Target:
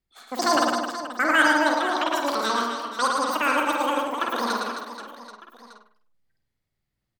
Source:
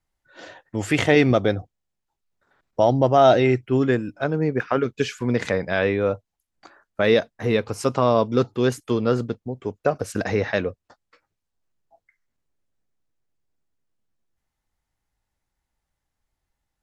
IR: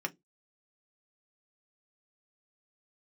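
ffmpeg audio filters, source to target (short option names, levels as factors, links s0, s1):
-filter_complex "[0:a]asplit=2[s0][s1];[s1]adelay=118,lowpass=f=1700:p=1,volume=0.631,asplit=2[s2][s3];[s3]adelay=118,lowpass=f=1700:p=1,volume=0.51,asplit=2[s4][s5];[s5]adelay=118,lowpass=f=1700:p=1,volume=0.51,asplit=2[s6][s7];[s7]adelay=118,lowpass=f=1700:p=1,volume=0.51,asplit=2[s8][s9];[s9]adelay=118,lowpass=f=1700:p=1,volume=0.51,asplit=2[s10][s11];[s11]adelay=118,lowpass=f=1700:p=1,volume=0.51,asplit=2[s12][s13];[s13]adelay=118,lowpass=f=1700:p=1,volume=0.51[s14];[s2][s4][s6][s8][s10][s12][s14]amix=inputs=7:normalize=0[s15];[s0][s15]amix=inputs=2:normalize=0,asetrate=103194,aresample=44100,asplit=2[s16][s17];[s17]aecho=0:1:110|264|479.6|781.4|1204:0.631|0.398|0.251|0.158|0.1[s18];[s16][s18]amix=inputs=2:normalize=0,volume=0.531"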